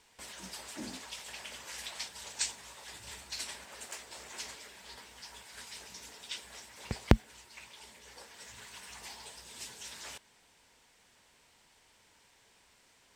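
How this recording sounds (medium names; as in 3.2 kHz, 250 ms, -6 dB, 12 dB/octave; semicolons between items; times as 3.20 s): noise floor -66 dBFS; spectral tilt -3.5 dB/octave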